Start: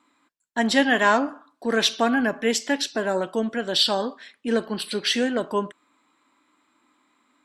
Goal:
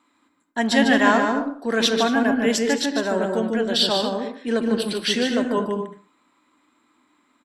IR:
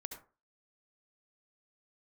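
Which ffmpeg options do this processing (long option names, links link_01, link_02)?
-filter_complex "[0:a]asplit=2[link_01][link_02];[link_02]adelay=120,highpass=300,lowpass=3400,asoftclip=type=hard:threshold=-14dB,volume=-19dB[link_03];[link_01][link_03]amix=inputs=2:normalize=0,asplit=2[link_04][link_05];[1:a]atrim=start_sample=2205,lowshelf=frequency=370:gain=11.5,adelay=149[link_06];[link_05][link_06]afir=irnorm=-1:irlink=0,volume=-3dB[link_07];[link_04][link_07]amix=inputs=2:normalize=0"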